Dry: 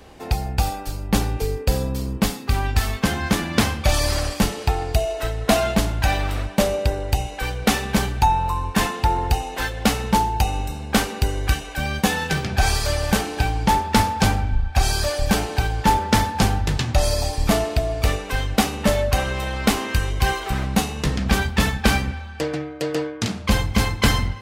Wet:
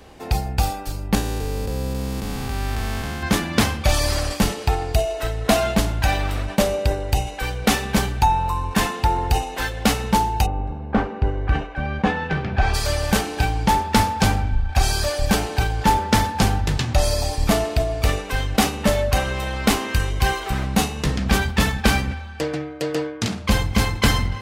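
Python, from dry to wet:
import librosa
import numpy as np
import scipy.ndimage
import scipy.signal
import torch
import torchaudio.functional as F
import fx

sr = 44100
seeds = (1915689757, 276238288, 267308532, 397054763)

y = fx.spec_blur(x, sr, span_ms=480.0, at=(1.15, 3.23))
y = fx.lowpass(y, sr, hz=fx.line((10.45, 1000.0), (12.73, 2500.0)), slope=12, at=(10.45, 12.73), fade=0.02)
y = fx.sustainer(y, sr, db_per_s=130.0)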